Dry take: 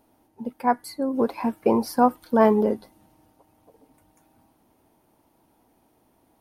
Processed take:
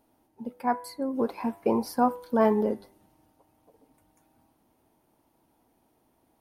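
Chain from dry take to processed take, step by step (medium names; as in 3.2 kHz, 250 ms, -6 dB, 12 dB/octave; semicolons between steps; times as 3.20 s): de-hum 98.33 Hz, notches 27; trim -4.5 dB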